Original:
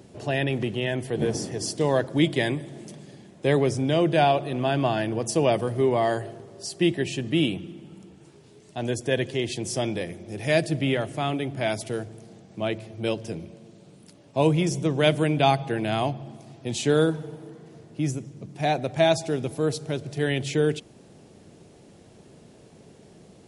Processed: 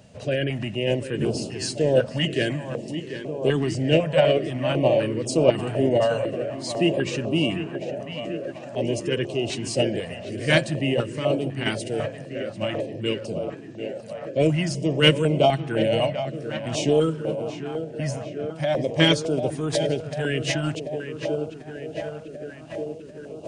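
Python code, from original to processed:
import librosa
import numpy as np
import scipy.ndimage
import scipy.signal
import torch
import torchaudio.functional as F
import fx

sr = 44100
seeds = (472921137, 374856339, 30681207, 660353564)

p1 = fx.small_body(x, sr, hz=(620.0, 3200.0), ring_ms=35, db=12)
p2 = fx.echo_tape(p1, sr, ms=742, feedback_pct=83, wet_db=-9.0, lp_hz=2800.0, drive_db=1.0, wow_cents=30)
p3 = fx.formant_shift(p2, sr, semitones=-2)
p4 = 10.0 ** (-14.5 / 20.0) * np.tanh(p3 / 10.0 ** (-14.5 / 20.0))
p5 = p3 + F.gain(torch.from_numpy(p4), -8.5).numpy()
p6 = fx.filter_held_notch(p5, sr, hz=4.0, low_hz=350.0, high_hz=1800.0)
y = F.gain(torch.from_numpy(p6), -2.5).numpy()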